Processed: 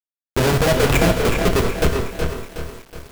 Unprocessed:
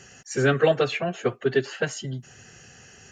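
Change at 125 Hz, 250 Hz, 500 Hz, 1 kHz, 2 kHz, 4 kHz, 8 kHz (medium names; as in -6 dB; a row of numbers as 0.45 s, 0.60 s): +9.0 dB, +8.0 dB, +4.0 dB, +8.0 dB, +5.0 dB, +8.5 dB, +9.5 dB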